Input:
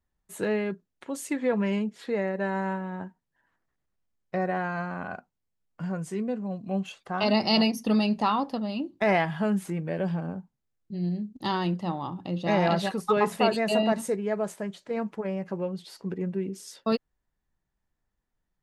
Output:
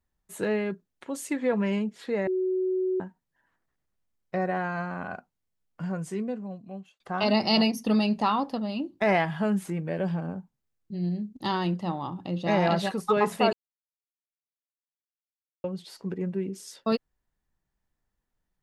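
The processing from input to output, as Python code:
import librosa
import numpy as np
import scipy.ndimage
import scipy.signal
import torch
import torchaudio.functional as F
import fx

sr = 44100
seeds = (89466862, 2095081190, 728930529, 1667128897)

y = fx.edit(x, sr, fx.bleep(start_s=2.27, length_s=0.73, hz=372.0, db=-23.5),
    fx.fade_out_span(start_s=6.13, length_s=0.87),
    fx.silence(start_s=13.53, length_s=2.11), tone=tone)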